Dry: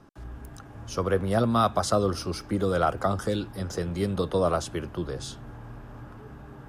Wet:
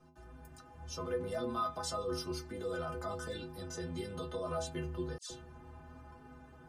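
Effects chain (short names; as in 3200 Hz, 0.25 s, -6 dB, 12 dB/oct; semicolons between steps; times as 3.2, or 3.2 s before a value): limiter -20 dBFS, peak gain reduction 9.5 dB; metallic resonator 75 Hz, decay 0.71 s, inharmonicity 0.03; 5.18–5.8 dispersion lows, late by 0.123 s, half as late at 1700 Hz; gain +4.5 dB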